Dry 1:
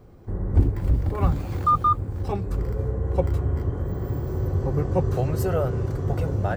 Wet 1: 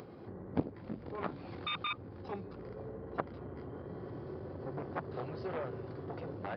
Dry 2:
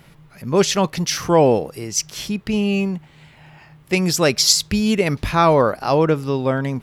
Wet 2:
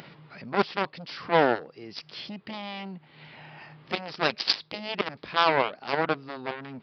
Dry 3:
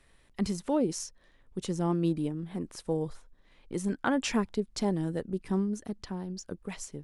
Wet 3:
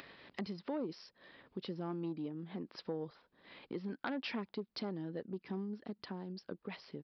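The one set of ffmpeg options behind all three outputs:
-af "aeval=exprs='0.891*(cos(1*acos(clip(val(0)/0.891,-1,1)))-cos(1*PI/2))+0.316*(cos(3*acos(clip(val(0)/0.891,-1,1)))-cos(3*PI/2))+0.0355*(cos(5*acos(clip(val(0)/0.891,-1,1)))-cos(5*PI/2))+0.0355*(cos(7*acos(clip(val(0)/0.891,-1,1)))-cos(7*PI/2))':c=same,aresample=11025,asoftclip=type=tanh:threshold=0.237,aresample=44100,acompressor=mode=upward:threshold=0.0158:ratio=2.5,highpass=190,volume=1.68"

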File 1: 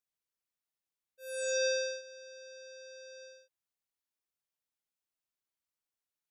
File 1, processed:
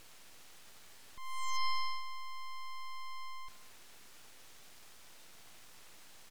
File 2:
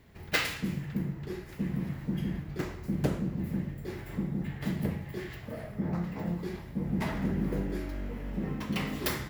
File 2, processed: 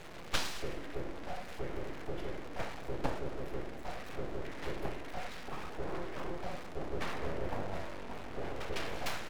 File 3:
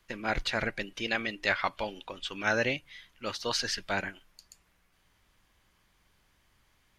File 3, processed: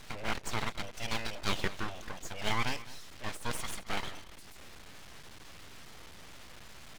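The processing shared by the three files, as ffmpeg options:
-af "aeval=exprs='val(0)+0.5*0.0141*sgn(val(0))':c=same,highpass=340,aemphasis=mode=reproduction:type=bsi,aeval=exprs='abs(val(0))':c=same,aecho=1:1:215:0.126,volume=0.841"

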